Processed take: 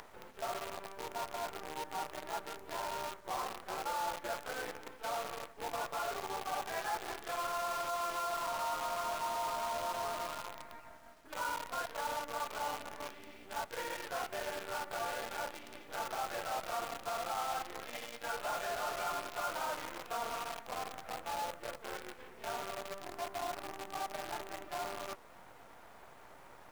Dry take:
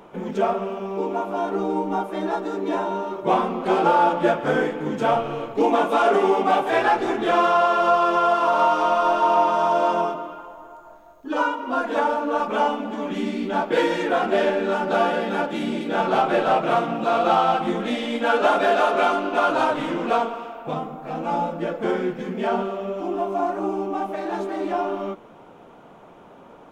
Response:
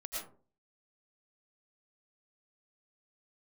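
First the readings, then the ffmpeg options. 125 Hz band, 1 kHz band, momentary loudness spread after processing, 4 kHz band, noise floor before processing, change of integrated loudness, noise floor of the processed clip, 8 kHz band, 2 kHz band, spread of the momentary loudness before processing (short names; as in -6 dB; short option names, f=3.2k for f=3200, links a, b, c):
-21.0 dB, -17.0 dB, 10 LU, -10.5 dB, -47 dBFS, -17.5 dB, -56 dBFS, n/a, -14.5 dB, 10 LU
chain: -af "aeval=exprs='val(0)+0.00794*(sin(2*PI*50*n/s)+sin(2*PI*2*50*n/s)/2+sin(2*PI*3*50*n/s)/3+sin(2*PI*4*50*n/s)/4+sin(2*PI*5*50*n/s)/5)':c=same,areverse,acompressor=threshold=-32dB:ratio=5,areverse,highpass=690,lowpass=2.5k,acompressor=mode=upward:threshold=-45dB:ratio=2.5,acrusher=bits=7:dc=4:mix=0:aa=0.000001,volume=-2.5dB"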